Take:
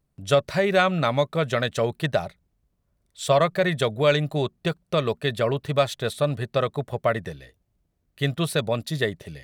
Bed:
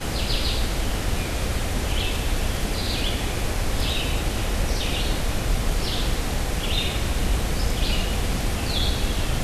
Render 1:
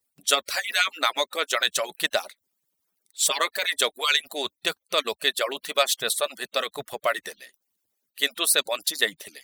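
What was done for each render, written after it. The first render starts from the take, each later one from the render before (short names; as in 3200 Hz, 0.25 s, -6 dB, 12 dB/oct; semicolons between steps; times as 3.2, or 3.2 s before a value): median-filter separation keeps percussive; tilt +4.5 dB/oct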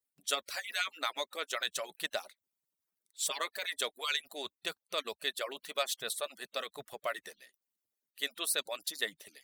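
gain -11.5 dB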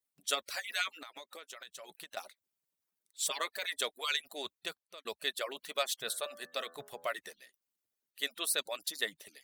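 0.91–2.17 compressor 10:1, threshold -44 dBFS; 4.55–5.05 fade out; 6–7.09 de-hum 83.29 Hz, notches 21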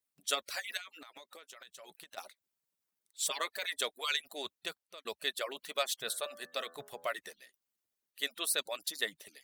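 0.77–2.18 compressor 3:1, threshold -48 dBFS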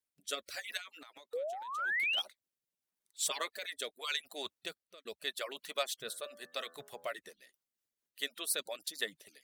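1.33–2.22 painted sound rise 460–3400 Hz -32 dBFS; rotary speaker horn 0.85 Hz, later 6.3 Hz, at 7.2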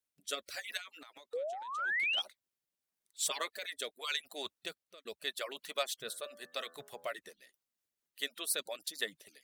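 1.33–2.22 polynomial smoothing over 9 samples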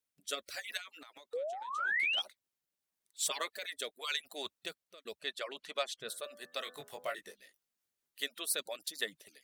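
1.58–2.08 doubler 15 ms -6 dB; 5.21–6.09 air absorption 56 m; 6.64–8.23 doubler 20 ms -4 dB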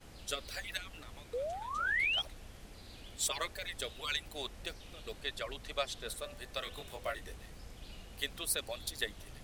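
add bed -27 dB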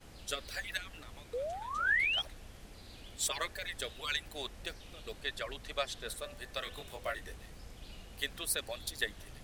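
dynamic EQ 1700 Hz, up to +5 dB, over -57 dBFS, Q 4.4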